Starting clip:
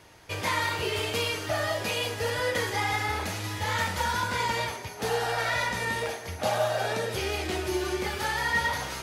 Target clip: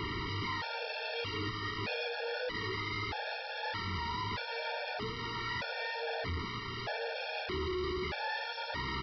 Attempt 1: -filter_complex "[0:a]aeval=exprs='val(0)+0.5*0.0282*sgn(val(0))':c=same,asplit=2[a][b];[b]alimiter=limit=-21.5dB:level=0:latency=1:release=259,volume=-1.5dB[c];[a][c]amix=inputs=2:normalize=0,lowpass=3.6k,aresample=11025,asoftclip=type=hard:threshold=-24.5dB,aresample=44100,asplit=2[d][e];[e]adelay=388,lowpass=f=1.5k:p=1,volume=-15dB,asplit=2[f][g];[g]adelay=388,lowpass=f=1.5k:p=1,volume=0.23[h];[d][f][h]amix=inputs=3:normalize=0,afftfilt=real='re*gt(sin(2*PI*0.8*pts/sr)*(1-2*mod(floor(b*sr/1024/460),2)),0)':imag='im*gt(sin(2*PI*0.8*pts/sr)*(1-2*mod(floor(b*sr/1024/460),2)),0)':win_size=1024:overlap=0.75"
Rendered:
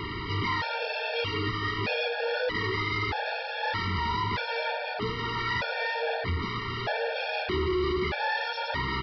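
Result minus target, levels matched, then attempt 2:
hard clip: distortion -4 dB
-filter_complex "[0:a]aeval=exprs='val(0)+0.5*0.0282*sgn(val(0))':c=same,asplit=2[a][b];[b]alimiter=limit=-21.5dB:level=0:latency=1:release=259,volume=-1.5dB[c];[a][c]amix=inputs=2:normalize=0,lowpass=3.6k,aresample=11025,asoftclip=type=hard:threshold=-33.5dB,aresample=44100,asplit=2[d][e];[e]adelay=388,lowpass=f=1.5k:p=1,volume=-15dB,asplit=2[f][g];[g]adelay=388,lowpass=f=1.5k:p=1,volume=0.23[h];[d][f][h]amix=inputs=3:normalize=0,afftfilt=real='re*gt(sin(2*PI*0.8*pts/sr)*(1-2*mod(floor(b*sr/1024/460),2)),0)':imag='im*gt(sin(2*PI*0.8*pts/sr)*(1-2*mod(floor(b*sr/1024/460),2)),0)':win_size=1024:overlap=0.75"

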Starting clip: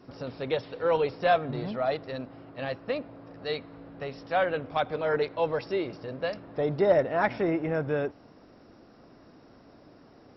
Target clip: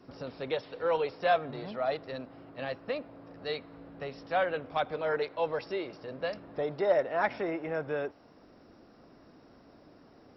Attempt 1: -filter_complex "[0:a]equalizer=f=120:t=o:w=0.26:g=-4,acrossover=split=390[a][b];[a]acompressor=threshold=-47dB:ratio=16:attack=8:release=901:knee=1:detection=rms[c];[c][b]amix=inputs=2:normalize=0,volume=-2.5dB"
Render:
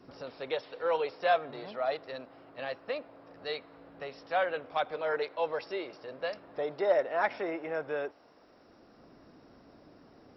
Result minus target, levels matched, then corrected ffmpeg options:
compressor: peak gain reduction +10.5 dB
-filter_complex "[0:a]equalizer=f=120:t=o:w=0.26:g=-4,acrossover=split=390[a][b];[a]acompressor=threshold=-36dB:ratio=16:attack=8:release=901:knee=1:detection=rms[c];[c][b]amix=inputs=2:normalize=0,volume=-2.5dB"

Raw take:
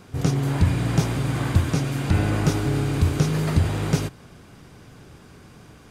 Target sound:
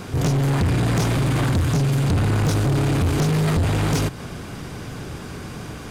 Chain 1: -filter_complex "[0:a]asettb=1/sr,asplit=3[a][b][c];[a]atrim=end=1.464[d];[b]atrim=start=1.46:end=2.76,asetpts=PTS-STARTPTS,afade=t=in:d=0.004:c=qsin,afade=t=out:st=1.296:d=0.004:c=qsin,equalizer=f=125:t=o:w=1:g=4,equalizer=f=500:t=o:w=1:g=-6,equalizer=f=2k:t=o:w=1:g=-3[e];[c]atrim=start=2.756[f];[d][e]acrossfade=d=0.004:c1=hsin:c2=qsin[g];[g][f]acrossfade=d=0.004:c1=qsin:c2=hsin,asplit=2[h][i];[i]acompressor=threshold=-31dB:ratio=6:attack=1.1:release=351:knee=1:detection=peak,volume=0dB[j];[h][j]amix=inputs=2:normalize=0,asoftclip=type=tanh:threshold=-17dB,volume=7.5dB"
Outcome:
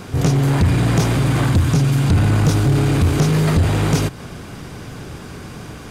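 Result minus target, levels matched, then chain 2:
soft clip: distortion -4 dB
-filter_complex "[0:a]asettb=1/sr,asplit=3[a][b][c];[a]atrim=end=1.464[d];[b]atrim=start=1.46:end=2.76,asetpts=PTS-STARTPTS,afade=t=in:d=0.004:c=qsin,afade=t=out:st=1.296:d=0.004:c=qsin,equalizer=f=125:t=o:w=1:g=4,equalizer=f=500:t=o:w=1:g=-6,equalizer=f=2k:t=o:w=1:g=-3[e];[c]atrim=start=2.756[f];[d][e]acrossfade=d=0.004:c1=hsin:c2=qsin[g];[g][f]acrossfade=d=0.004:c1=qsin:c2=hsin,asplit=2[h][i];[i]acompressor=threshold=-31dB:ratio=6:attack=1.1:release=351:knee=1:detection=peak,volume=0dB[j];[h][j]amix=inputs=2:normalize=0,asoftclip=type=tanh:threshold=-24dB,volume=7.5dB"

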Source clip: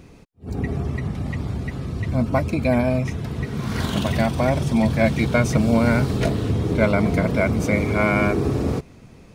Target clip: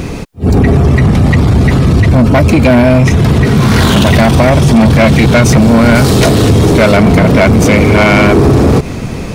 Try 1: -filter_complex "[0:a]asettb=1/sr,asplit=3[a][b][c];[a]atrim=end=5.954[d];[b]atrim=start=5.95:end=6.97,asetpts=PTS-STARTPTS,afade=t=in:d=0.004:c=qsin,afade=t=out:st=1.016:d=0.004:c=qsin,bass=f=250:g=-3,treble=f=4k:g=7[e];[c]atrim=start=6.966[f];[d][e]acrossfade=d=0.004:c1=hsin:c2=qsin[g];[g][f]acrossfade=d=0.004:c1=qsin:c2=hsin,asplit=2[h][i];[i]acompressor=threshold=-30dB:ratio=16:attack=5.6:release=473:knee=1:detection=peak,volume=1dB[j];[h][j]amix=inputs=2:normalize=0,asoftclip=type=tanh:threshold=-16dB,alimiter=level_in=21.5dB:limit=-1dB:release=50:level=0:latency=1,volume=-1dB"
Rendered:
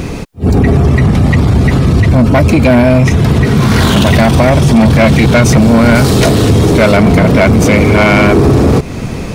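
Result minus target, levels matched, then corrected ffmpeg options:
compressor: peak gain reduction +7.5 dB
-filter_complex "[0:a]asettb=1/sr,asplit=3[a][b][c];[a]atrim=end=5.954[d];[b]atrim=start=5.95:end=6.97,asetpts=PTS-STARTPTS,afade=t=in:d=0.004:c=qsin,afade=t=out:st=1.016:d=0.004:c=qsin,bass=f=250:g=-3,treble=f=4k:g=7[e];[c]atrim=start=6.966[f];[d][e]acrossfade=d=0.004:c1=hsin:c2=qsin[g];[g][f]acrossfade=d=0.004:c1=qsin:c2=hsin,asplit=2[h][i];[i]acompressor=threshold=-22dB:ratio=16:attack=5.6:release=473:knee=1:detection=peak,volume=1dB[j];[h][j]amix=inputs=2:normalize=0,asoftclip=type=tanh:threshold=-16dB,alimiter=level_in=21.5dB:limit=-1dB:release=50:level=0:latency=1,volume=-1dB"

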